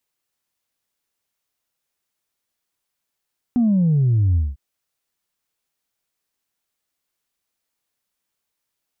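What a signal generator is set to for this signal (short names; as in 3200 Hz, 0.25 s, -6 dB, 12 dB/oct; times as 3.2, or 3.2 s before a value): sub drop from 250 Hz, over 1.00 s, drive 0 dB, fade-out 0.20 s, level -14 dB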